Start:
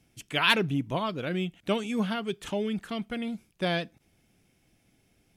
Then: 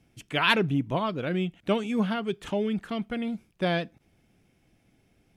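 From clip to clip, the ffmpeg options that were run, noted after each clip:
ffmpeg -i in.wav -af "highshelf=frequency=3500:gain=-8.5,volume=2.5dB" out.wav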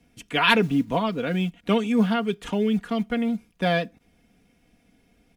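ffmpeg -i in.wav -filter_complex "[0:a]acrossover=split=190|1000[link_01][link_02][link_03];[link_01]acrusher=bits=6:mode=log:mix=0:aa=0.000001[link_04];[link_04][link_02][link_03]amix=inputs=3:normalize=0,aecho=1:1:4.2:0.58,volume=2.5dB" out.wav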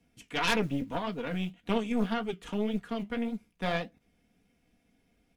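ffmpeg -i in.wav -af "flanger=delay=9.8:depth=7.6:regen=-53:speed=1.8:shape=triangular,aeval=exprs='0.355*(cos(1*acos(clip(val(0)/0.355,-1,1)))-cos(1*PI/2))+0.126*(cos(4*acos(clip(val(0)/0.355,-1,1)))-cos(4*PI/2))+0.0447*(cos(5*acos(clip(val(0)/0.355,-1,1)))-cos(5*PI/2))':channel_layout=same,volume=-8.5dB" out.wav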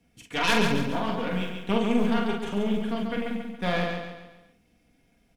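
ffmpeg -i in.wav -filter_complex "[0:a]asplit=2[link_01][link_02];[link_02]adelay=45,volume=-4dB[link_03];[link_01][link_03]amix=inputs=2:normalize=0,aecho=1:1:139|278|417|556|695:0.562|0.247|0.109|0.0479|0.0211,volume=2.5dB" out.wav

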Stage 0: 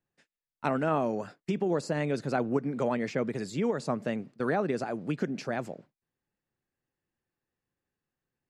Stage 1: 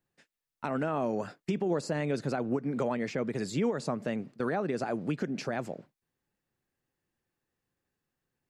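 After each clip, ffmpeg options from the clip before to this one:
ffmpeg -i in.wav -af "alimiter=limit=-23.5dB:level=0:latency=1:release=228,volume=3dB" out.wav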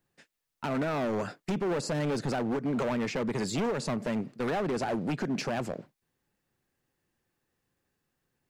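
ffmpeg -i in.wav -af "asoftclip=type=hard:threshold=-31.5dB,volume=5dB" out.wav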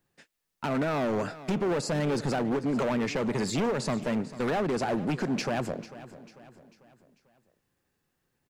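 ffmpeg -i in.wav -af "aecho=1:1:445|890|1335|1780:0.158|0.0713|0.0321|0.0144,volume=2dB" out.wav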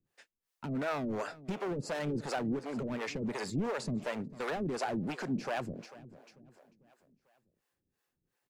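ffmpeg -i in.wav -filter_complex "[0:a]acrossover=split=410[link_01][link_02];[link_01]aeval=exprs='val(0)*(1-1/2+1/2*cos(2*PI*2.8*n/s))':channel_layout=same[link_03];[link_02]aeval=exprs='val(0)*(1-1/2-1/2*cos(2*PI*2.8*n/s))':channel_layout=same[link_04];[link_03][link_04]amix=inputs=2:normalize=0,volume=-2dB" out.wav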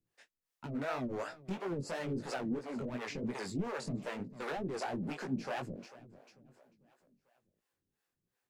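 ffmpeg -i in.wav -af "flanger=delay=15.5:depth=6:speed=3" out.wav

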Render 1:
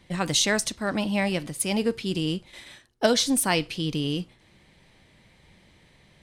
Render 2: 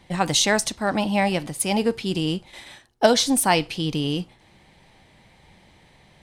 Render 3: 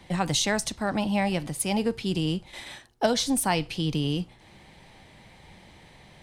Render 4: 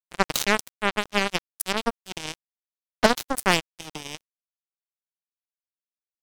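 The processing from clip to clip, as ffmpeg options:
ffmpeg -i in.wav -af "equalizer=frequency=810:width=2.7:gain=7.5,volume=2.5dB" out.wav
ffmpeg -i in.wav -filter_complex "[0:a]acrossover=split=150[link_01][link_02];[link_02]acompressor=threshold=-40dB:ratio=1.5[link_03];[link_01][link_03]amix=inputs=2:normalize=0,volume=2.5dB" out.wav
ffmpeg -i in.wav -af "acrusher=bits=2:mix=0:aa=0.5,volume=6dB" out.wav

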